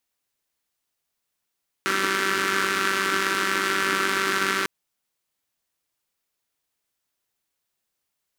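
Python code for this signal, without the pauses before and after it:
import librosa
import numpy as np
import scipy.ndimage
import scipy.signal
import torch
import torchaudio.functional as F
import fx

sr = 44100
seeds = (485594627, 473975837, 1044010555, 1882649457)

y = fx.engine_four(sr, seeds[0], length_s=2.8, rpm=5800, resonances_hz=(340.0, 1400.0))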